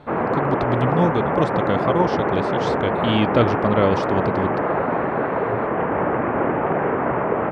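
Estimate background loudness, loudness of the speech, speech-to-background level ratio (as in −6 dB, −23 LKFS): −22.0 LKFS, −23.0 LKFS, −1.0 dB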